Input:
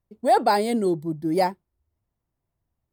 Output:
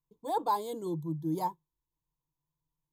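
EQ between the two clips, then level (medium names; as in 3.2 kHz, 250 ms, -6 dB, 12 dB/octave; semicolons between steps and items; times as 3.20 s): rippled EQ curve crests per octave 1.1, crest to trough 14 dB; dynamic bell 4 kHz, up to -4 dB, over -41 dBFS, Q 1.2; static phaser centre 380 Hz, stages 8; -8.0 dB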